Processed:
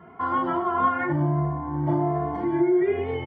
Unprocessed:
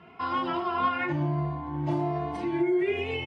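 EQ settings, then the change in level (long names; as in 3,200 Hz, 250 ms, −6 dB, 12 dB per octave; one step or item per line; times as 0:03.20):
Savitzky-Golay smoothing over 41 samples
+4.5 dB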